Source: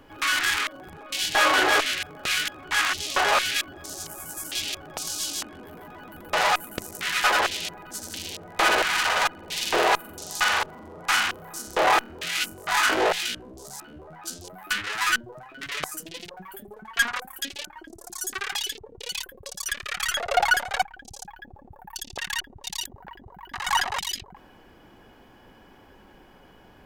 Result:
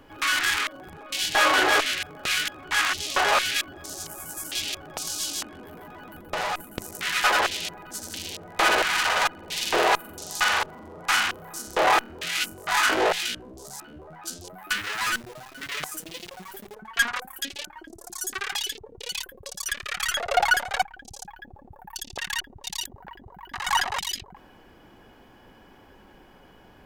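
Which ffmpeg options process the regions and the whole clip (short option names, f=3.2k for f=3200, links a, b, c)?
-filter_complex "[0:a]asettb=1/sr,asplit=3[a][b][c];[a]atrim=end=6.204[d];[b]atrim=start=6.2:end=6.8,asetpts=PTS-STARTPTS,afade=t=in:d=0.004:c=qsin,afade=t=out:st=0.596:d=0.004:c=qsin,agate=range=-6dB:threshold=-37dB:ratio=16:release=100:detection=peak,lowshelf=f=450:g=7,acompressor=threshold=-25dB:ratio=4:attack=3.2:release=140:knee=1:detection=peak[e];[c]atrim=start=6.796[f];[d][e]acrossfade=d=0.004:c1=hsin:c2=qsin[g];[g][f]acrossfade=d=0.004:c1=qsin:c2=hsin,asettb=1/sr,asplit=3[h][i][j];[h]atrim=end=14.744[k];[i]atrim=start=14.74:end=16.75,asetpts=PTS-STARTPTS,afade=t=in:d=0.004:c=qsin,afade=t=out:st=2.006:d=0.004:c=qsin,acrusher=bits=8:dc=4:mix=0:aa=0.000001,asoftclip=type=hard:threshold=-22.5dB[l];[j]atrim=start=16.746[m];[k][l]acrossfade=d=0.004:c1=hsin:c2=qsin[n];[n][m]acrossfade=d=0.004:c1=qsin:c2=hsin"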